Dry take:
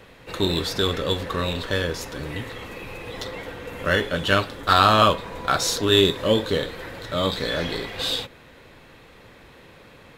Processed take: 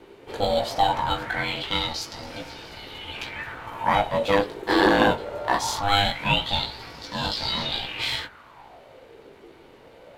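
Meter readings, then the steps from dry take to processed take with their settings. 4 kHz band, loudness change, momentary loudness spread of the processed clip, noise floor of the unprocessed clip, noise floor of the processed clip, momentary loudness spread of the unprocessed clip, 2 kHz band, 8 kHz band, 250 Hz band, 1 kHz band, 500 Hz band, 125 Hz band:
-2.0 dB, -2.0 dB, 16 LU, -49 dBFS, -50 dBFS, 18 LU, -0.5 dB, -5.0 dB, -1.5 dB, 0.0 dB, -3.0 dB, -5.5 dB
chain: chorus 0.32 Hz, delay 16.5 ms, depth 2.9 ms; ring modulator 400 Hz; LFO bell 0.21 Hz 380–5300 Hz +15 dB

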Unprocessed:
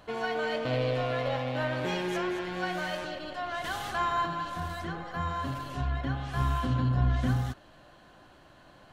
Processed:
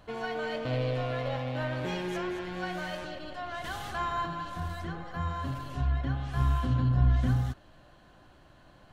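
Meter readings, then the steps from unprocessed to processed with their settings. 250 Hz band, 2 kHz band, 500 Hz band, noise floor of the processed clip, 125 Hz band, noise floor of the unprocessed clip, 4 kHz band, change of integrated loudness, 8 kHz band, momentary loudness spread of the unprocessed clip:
-1.0 dB, -3.5 dB, -3.0 dB, -57 dBFS, +1.5 dB, -56 dBFS, -3.5 dB, -0.5 dB, -3.5 dB, 8 LU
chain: low shelf 140 Hz +8.5 dB; gain -3.5 dB

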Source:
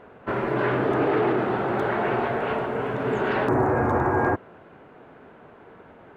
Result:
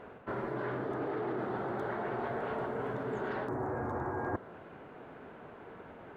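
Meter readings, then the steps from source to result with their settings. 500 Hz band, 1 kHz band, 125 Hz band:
-12.0 dB, -12.5 dB, -12.5 dB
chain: dynamic EQ 2600 Hz, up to -8 dB, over -51 dBFS, Q 2.6; reverse; compressor 10:1, threshold -31 dBFS, peak gain reduction 14 dB; reverse; gain -1.5 dB

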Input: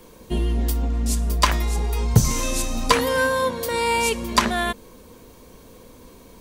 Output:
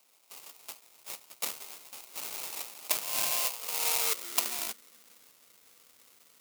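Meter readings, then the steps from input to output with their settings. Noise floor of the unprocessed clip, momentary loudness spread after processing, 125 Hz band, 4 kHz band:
-47 dBFS, 19 LU, under -40 dB, -8.5 dB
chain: high-pass sweep 2300 Hz -> 100 Hz, 2.4–5.64; sample-rate reducer 1700 Hz, jitter 20%; differentiator; gain -1.5 dB

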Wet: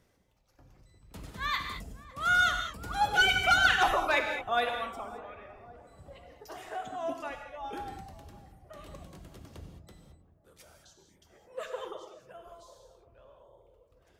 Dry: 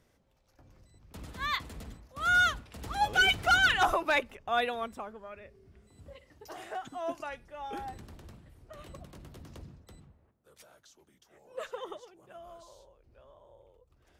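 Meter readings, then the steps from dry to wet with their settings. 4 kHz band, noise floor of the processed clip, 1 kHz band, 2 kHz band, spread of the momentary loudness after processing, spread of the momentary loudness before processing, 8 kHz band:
+0.5 dB, -67 dBFS, +1.0 dB, +0.5 dB, 23 LU, 23 LU, +1.0 dB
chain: reverb removal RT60 1.1 s; on a send: darkening echo 0.557 s, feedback 67%, low-pass 860 Hz, level -16 dB; on the sum: non-linear reverb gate 0.24 s flat, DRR 3.5 dB

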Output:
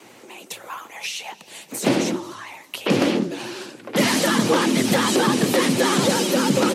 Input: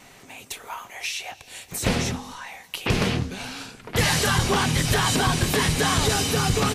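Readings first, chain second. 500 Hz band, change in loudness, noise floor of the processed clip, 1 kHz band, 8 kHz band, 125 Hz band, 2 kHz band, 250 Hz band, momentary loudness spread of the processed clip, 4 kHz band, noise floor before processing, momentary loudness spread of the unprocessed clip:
+6.5 dB, +2.5 dB, -48 dBFS, +1.5 dB, 0.0 dB, -5.0 dB, +0.5 dB, +7.5 dB, 17 LU, +0.5 dB, -49 dBFS, 17 LU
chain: bell 280 Hz +6.5 dB 2 oct; frequency shift +99 Hz; vibrato 13 Hz 98 cents

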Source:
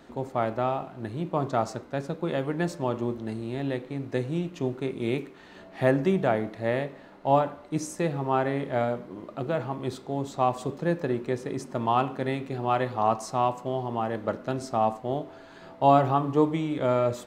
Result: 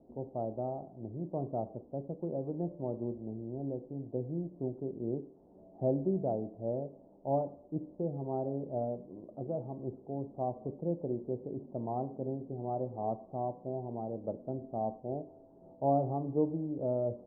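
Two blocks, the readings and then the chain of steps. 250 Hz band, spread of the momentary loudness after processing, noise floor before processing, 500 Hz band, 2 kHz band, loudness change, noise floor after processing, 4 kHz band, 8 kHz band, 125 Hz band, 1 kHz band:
-7.5 dB, 9 LU, -49 dBFS, -8.0 dB, under -40 dB, -9.0 dB, -58 dBFS, under -40 dB, under -35 dB, -7.5 dB, -13.0 dB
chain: steep low-pass 730 Hz 36 dB/oct; gain -7.5 dB

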